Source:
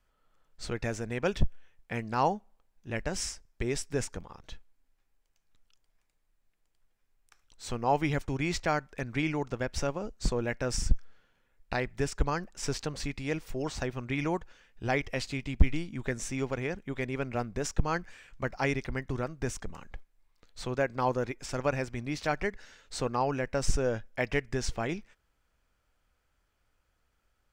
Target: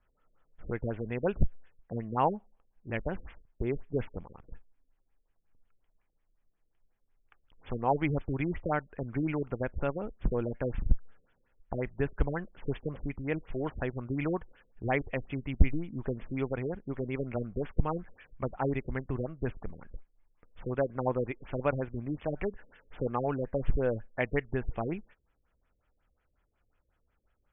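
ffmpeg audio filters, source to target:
ffmpeg -i in.wav -af "afftfilt=real='re*lt(b*sr/1024,540*pow(3600/540,0.5+0.5*sin(2*PI*5.5*pts/sr)))':imag='im*lt(b*sr/1024,540*pow(3600/540,0.5+0.5*sin(2*PI*5.5*pts/sr)))':win_size=1024:overlap=0.75" out.wav

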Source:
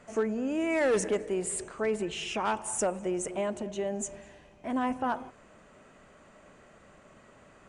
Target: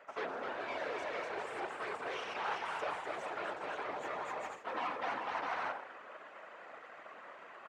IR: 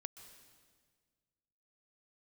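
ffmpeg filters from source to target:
-filter_complex "[0:a]asplit=2[link_01][link_02];[1:a]atrim=start_sample=2205[link_03];[link_02][link_03]afir=irnorm=-1:irlink=0,volume=-5dB[link_04];[link_01][link_04]amix=inputs=2:normalize=0,aeval=exprs='0.141*(cos(1*acos(clip(val(0)/0.141,-1,1)))-cos(1*PI/2))+0.0141*(cos(4*acos(clip(val(0)/0.141,-1,1)))-cos(4*PI/2))+0.00355*(cos(7*acos(clip(val(0)/0.141,-1,1)))-cos(7*PI/2))+0.0447*(cos(8*acos(clip(val(0)/0.141,-1,1)))-cos(8*PI/2))':channel_layout=same,acrusher=bits=3:mode=log:mix=0:aa=0.000001,aecho=1:1:250|400|490|544|576.4:0.631|0.398|0.251|0.158|0.1,areverse,acompressor=threshold=-32dB:ratio=12,areverse,afftfilt=real='hypot(re,im)*cos(2*PI*random(0))':imag='hypot(re,im)*sin(2*PI*random(1))':win_size=512:overlap=0.75,highpass=670,lowpass=2200,volume=11.5dB"

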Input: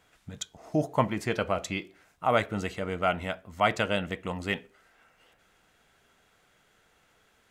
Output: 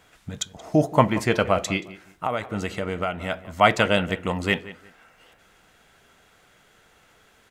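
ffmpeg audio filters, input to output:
ffmpeg -i in.wav -filter_complex "[0:a]asplit=3[link_01][link_02][link_03];[link_01]afade=type=out:start_time=1.76:duration=0.02[link_04];[link_02]acompressor=threshold=-31dB:ratio=6,afade=type=in:start_time=1.76:duration=0.02,afade=type=out:start_time=3.3:duration=0.02[link_05];[link_03]afade=type=in:start_time=3.3:duration=0.02[link_06];[link_04][link_05][link_06]amix=inputs=3:normalize=0,asplit=2[link_07][link_08];[link_08]adelay=178,lowpass=frequency=2800:poles=1,volume=-16.5dB,asplit=2[link_09][link_10];[link_10]adelay=178,lowpass=frequency=2800:poles=1,volume=0.25[link_11];[link_09][link_11]amix=inputs=2:normalize=0[link_12];[link_07][link_12]amix=inputs=2:normalize=0,volume=7.5dB" out.wav

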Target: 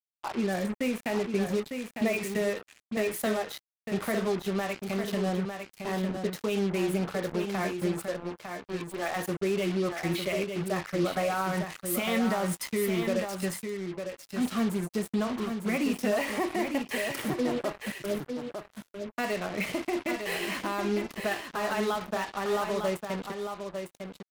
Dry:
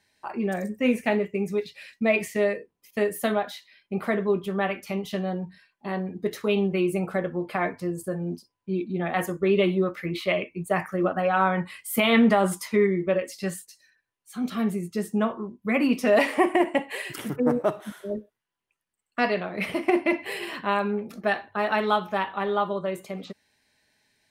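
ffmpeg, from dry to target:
ffmpeg -i in.wav -filter_complex "[0:a]asettb=1/sr,asplit=3[link_01][link_02][link_03];[link_01]atrim=end=8.054[link_04];[link_02]atrim=start=8.05:end=9.16,asetpts=PTS-STARTPTS,afade=type=in:duration=0.004:curve=qsin,afade=type=out:start_time=1.106:duration=0.004:curve=qsin,highpass=490[link_05];[link_03]atrim=start=9.156[link_06];[link_04][link_05]acrossfade=duration=0.004:curve1=hsin:curve2=qsin[link_07];[link_07][link_06]acrossfade=duration=0.004:curve1=qsin:curve2=hsin,alimiter=limit=-20.5dB:level=0:latency=1:release=147,acrusher=bits=5:mix=0:aa=0.5,aecho=1:1:903:0.473" out.wav

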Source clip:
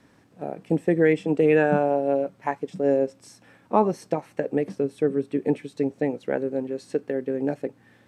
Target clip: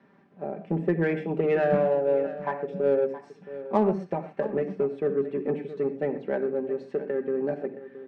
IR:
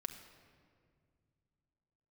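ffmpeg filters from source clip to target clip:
-filter_complex "[0:a]highpass=150,lowpass=2100,aecho=1:1:5.1:0.31[link_01];[1:a]atrim=start_sample=2205,atrim=end_sample=6174[link_02];[link_01][link_02]afir=irnorm=-1:irlink=0,asplit=2[link_03][link_04];[link_04]asoftclip=type=tanh:threshold=-23.5dB,volume=-4dB[link_05];[link_03][link_05]amix=inputs=2:normalize=0,aecho=1:1:671:0.188,volume=-3.5dB"

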